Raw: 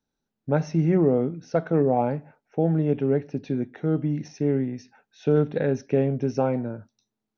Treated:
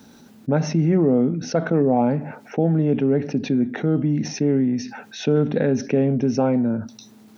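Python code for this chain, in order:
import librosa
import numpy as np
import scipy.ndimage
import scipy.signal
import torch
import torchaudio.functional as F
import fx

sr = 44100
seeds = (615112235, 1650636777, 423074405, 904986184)

y = scipy.signal.sosfilt(scipy.signal.butter(2, 84.0, 'highpass', fs=sr, output='sos'), x)
y = fx.peak_eq(y, sr, hz=230.0, db=8.5, octaves=0.43)
y = fx.env_flatten(y, sr, amount_pct=50)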